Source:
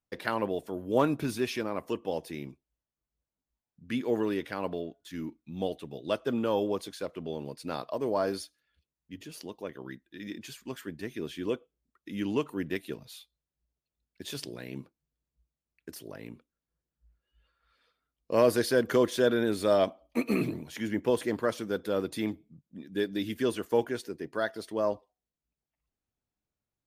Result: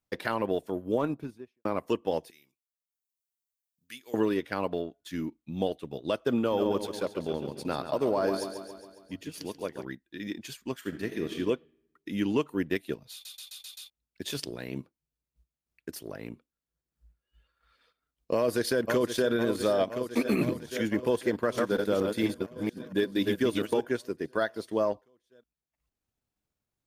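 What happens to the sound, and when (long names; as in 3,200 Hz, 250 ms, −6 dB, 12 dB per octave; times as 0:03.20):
0:00.66–0:01.65: fade out and dull
0:02.30–0:04.14: first-order pre-emphasis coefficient 0.97
0:06.38–0:09.85: repeating echo 137 ms, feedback 57%, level −8 dB
0:10.77–0:11.37: thrown reverb, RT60 0.99 s, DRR 4 dB
0:13.12: stutter in place 0.13 s, 6 plays
0:18.36–0:19.31: delay throw 510 ms, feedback 75%, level −11 dB
0:21.31–0:23.81: delay that plays each chunk backwards 231 ms, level −3 dB
whole clip: brickwall limiter −20 dBFS; transient designer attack +2 dB, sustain −7 dB; level +3 dB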